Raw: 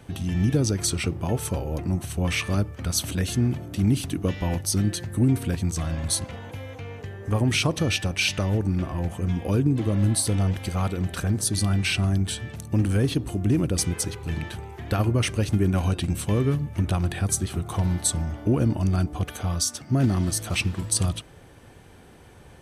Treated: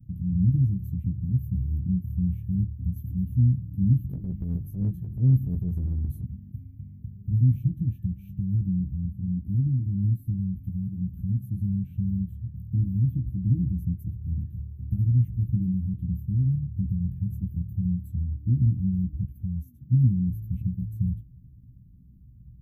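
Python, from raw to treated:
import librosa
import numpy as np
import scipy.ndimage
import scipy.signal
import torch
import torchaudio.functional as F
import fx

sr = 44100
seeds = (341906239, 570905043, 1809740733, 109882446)

y = scipy.signal.sosfilt(scipy.signal.cheby2(4, 50, [470.0, 9400.0], 'bandstop', fs=sr, output='sos'), x)
y = fx.transient(y, sr, attack_db=-11, sustain_db=4, at=(4.09, 6.23))
y = fx.rider(y, sr, range_db=3, speed_s=2.0)
y = fx.doubler(y, sr, ms=16.0, db=-4)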